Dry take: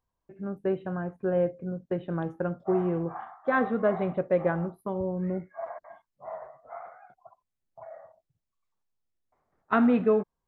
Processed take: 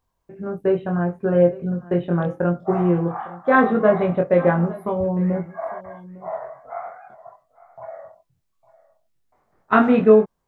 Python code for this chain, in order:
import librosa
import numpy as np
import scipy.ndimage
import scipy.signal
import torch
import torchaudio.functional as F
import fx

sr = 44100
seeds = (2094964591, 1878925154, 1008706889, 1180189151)

y = fx.doubler(x, sr, ms=23.0, db=-2.5)
y = y + 10.0 ** (-19.5 / 20.0) * np.pad(y, (int(855 * sr / 1000.0), 0))[:len(y)]
y = y * 10.0 ** (7.0 / 20.0)